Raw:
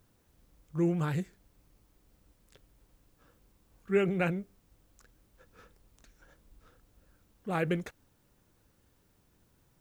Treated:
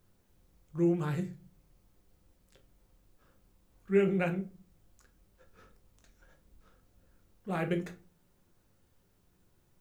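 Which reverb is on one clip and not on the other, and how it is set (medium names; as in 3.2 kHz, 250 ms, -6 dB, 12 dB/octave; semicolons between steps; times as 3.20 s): simulated room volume 170 m³, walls furnished, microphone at 0.95 m; trim -4 dB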